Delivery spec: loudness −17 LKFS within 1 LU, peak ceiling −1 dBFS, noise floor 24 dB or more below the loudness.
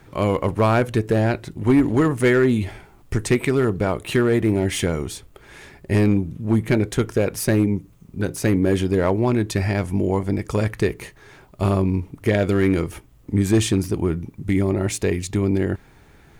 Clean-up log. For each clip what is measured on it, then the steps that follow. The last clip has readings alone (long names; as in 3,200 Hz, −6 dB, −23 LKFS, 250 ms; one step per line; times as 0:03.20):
share of clipped samples 1.5%; peaks flattened at −10.0 dBFS; integrated loudness −21.0 LKFS; sample peak −10.0 dBFS; target loudness −17.0 LKFS
→ clipped peaks rebuilt −10 dBFS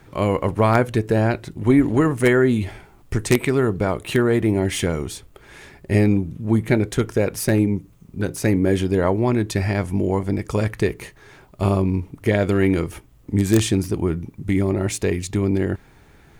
share of clipped samples 0.0%; integrated loudness −20.5 LKFS; sample peak −1.0 dBFS; target loudness −17.0 LKFS
→ level +3.5 dB
brickwall limiter −1 dBFS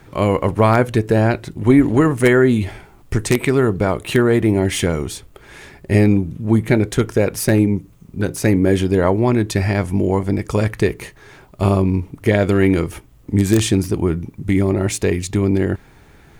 integrated loudness −17.5 LKFS; sample peak −1.0 dBFS; background noise floor −47 dBFS